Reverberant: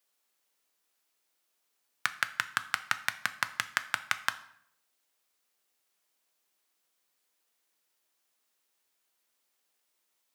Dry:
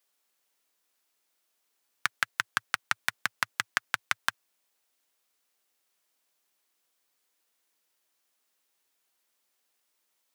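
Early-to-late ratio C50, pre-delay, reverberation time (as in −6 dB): 15.0 dB, 7 ms, 0.70 s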